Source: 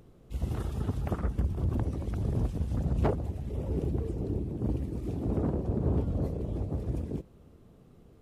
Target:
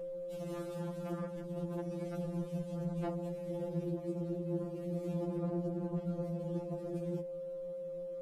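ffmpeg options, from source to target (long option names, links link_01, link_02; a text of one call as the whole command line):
ffmpeg -i in.wav -af "aeval=exprs='val(0)+0.00891*sin(2*PI*530*n/s)':channel_layout=same,alimiter=level_in=1dB:limit=-24dB:level=0:latency=1:release=185,volume=-1dB,afftfilt=real='re*2.83*eq(mod(b,8),0)':imag='im*2.83*eq(mod(b,8),0)':win_size=2048:overlap=0.75,volume=1dB" out.wav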